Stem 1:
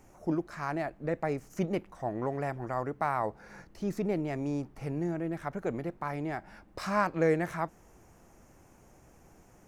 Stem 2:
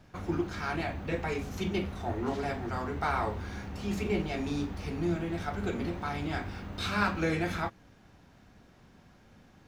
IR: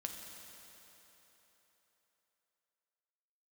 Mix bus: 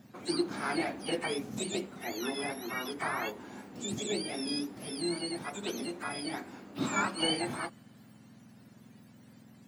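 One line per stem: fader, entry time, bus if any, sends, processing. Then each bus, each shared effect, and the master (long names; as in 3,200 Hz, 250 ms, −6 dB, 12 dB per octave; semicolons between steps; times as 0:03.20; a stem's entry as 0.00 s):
−3.0 dB, 0.00 s, send −23.5 dB, frequency axis turned over on the octave scale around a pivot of 1,200 Hz
−7.0 dB, 0.00 s, no send, high-pass filter 280 Hz 12 dB per octave; high-shelf EQ 9,300 Hz +4.5 dB; automatic gain control gain up to 9 dB; automatic ducking −11 dB, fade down 1.75 s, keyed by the first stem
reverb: on, RT60 3.9 s, pre-delay 5 ms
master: parametric band 270 Hz +9.5 dB 1.9 octaves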